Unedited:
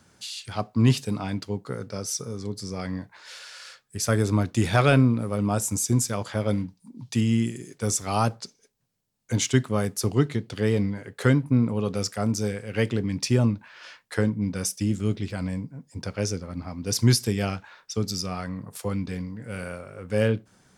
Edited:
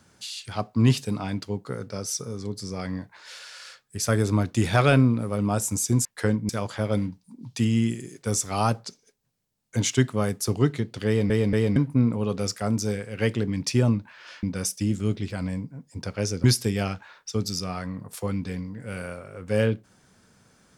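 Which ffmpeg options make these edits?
-filter_complex "[0:a]asplit=8[a][b][c][d][e][f][g][h];[a]atrim=end=6.052[i];[b]atrim=start=13.988:end=14.432[j];[c]atrim=start=6.048:end=10.862[k];[d]atrim=start=10.628:end=10.862[l];[e]atrim=start=10.628:end=10.862[m];[f]atrim=start=11.318:end=13.992[n];[g]atrim=start=14.428:end=16.442[o];[h]atrim=start=17.058[p];[i][j]acrossfade=d=0.004:c1=hsin:c2=hsin[q];[q][k]acrossfade=d=0.004:c1=hsin:c2=hsin[r];[r][l]acrossfade=d=0.004:c1=hsin:c2=hsin[s];[s][m]acrossfade=d=0.004:c1=hsin:c2=hsin[t];[t][n]acrossfade=d=0.004:c1=hsin:c2=hsin[u];[u][o]acrossfade=d=0.004:c1=hsin:c2=hsin[v];[v][p]acrossfade=d=0.004:c1=hsin:c2=hsin"

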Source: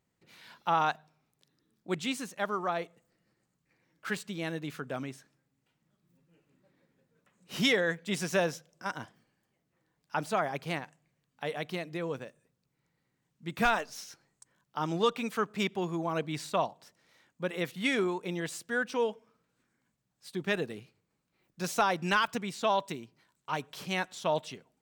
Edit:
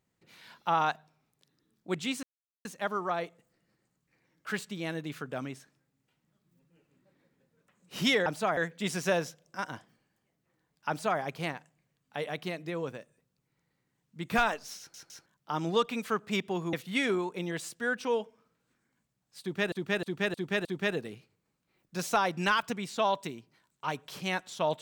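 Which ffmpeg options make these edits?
-filter_complex "[0:a]asplit=12[a][b][c][d][e][f][g][h][i][j][k][l];[a]atrim=end=2.23,asetpts=PTS-STARTPTS,afade=t=out:st=2.226:d=0.004:c=hsin,apad=pad_dur=0.42[m];[b]atrim=start=2.23:end=7.842,asetpts=PTS-STARTPTS,afade=t=in:d=0.004:c=hsin[n];[c]atrim=start=10.158:end=10.472[o];[d]atrim=start=7.838:end=14.212[p];[e]atrim=start=14.048:end=14.212[q];[f]atrim=start=14.048:end=14.212[r];[g]atrim=start=14.528:end=16.002[s];[h]atrim=start=17.618:end=20.612[t];[i]atrim=start=20.298:end=20.612[u];[j]atrim=start=20.298:end=20.612[v];[k]atrim=start=20.298:end=20.612[w];[l]atrim=start=20.298[x];[m][n]concat=n=2:v=0:a=1[y];[y][o]acrossfade=d=0.004:c1=hsin:c2=hsin[z];[z][p]acrossfade=d=0.004:c1=hsin:c2=hsin[aa];[aa][q]acrossfade=d=0.004:c1=hsin:c2=hsin[ab];[ab][r]acrossfade=d=0.004:c1=hsin:c2=hsin[ac];[ac][s]acrossfade=d=0.004:c1=hsin:c2=hsin[ad];[ad][t]acrossfade=d=0.004:c1=hsin:c2=hsin[ae];[ae][u]acrossfade=d=0.004:c1=hsin:c2=hsin[af];[af][v]acrossfade=d=0.004:c1=hsin:c2=hsin[ag];[ag][w]acrossfade=d=0.004:c1=hsin:c2=hsin[ah];[ah][x]acrossfade=d=0.004:c1=hsin:c2=hsin"

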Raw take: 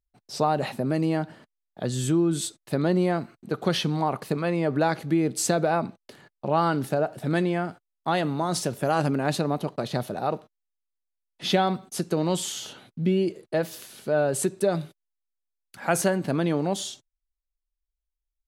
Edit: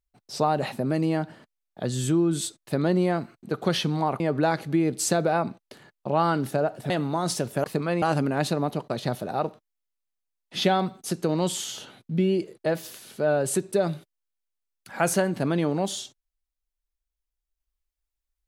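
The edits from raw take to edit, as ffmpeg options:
-filter_complex "[0:a]asplit=5[a][b][c][d][e];[a]atrim=end=4.202[f];[b]atrim=start=4.578:end=7.282[g];[c]atrim=start=8.158:end=8.902[h];[d]atrim=start=4.198:end=4.582[i];[e]atrim=start=8.898[j];[f][g]acrossfade=d=0.004:c1=hsin:c2=hsin[k];[k][h]acrossfade=d=0.004:c1=hsin:c2=hsin[l];[l][i]acrossfade=d=0.004:c1=hsin:c2=hsin[m];[m][j]acrossfade=d=0.004:c1=hsin:c2=hsin"

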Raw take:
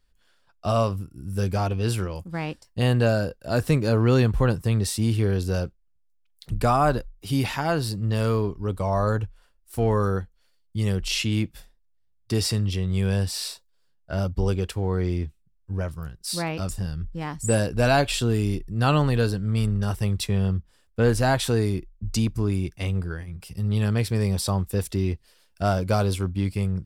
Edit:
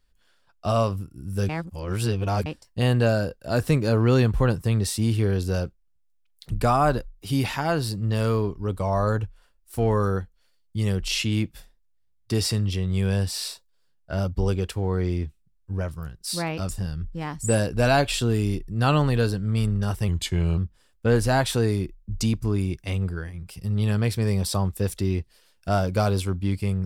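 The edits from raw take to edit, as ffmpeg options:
-filter_complex "[0:a]asplit=5[a][b][c][d][e];[a]atrim=end=1.492[f];[b]atrim=start=1.488:end=2.462,asetpts=PTS-STARTPTS,areverse[g];[c]atrim=start=2.458:end=20.084[h];[d]atrim=start=20.08:end=20.51,asetpts=PTS-STARTPTS,asetrate=38367,aresample=44100[i];[e]atrim=start=20.506[j];[f][g]acrossfade=d=0.004:c1=hsin:c2=hsin[k];[k][h]acrossfade=d=0.004:c1=hsin:c2=hsin[l];[l][i]acrossfade=d=0.004:c1=hsin:c2=hsin[m];[m][j]acrossfade=d=0.004:c1=hsin:c2=hsin"

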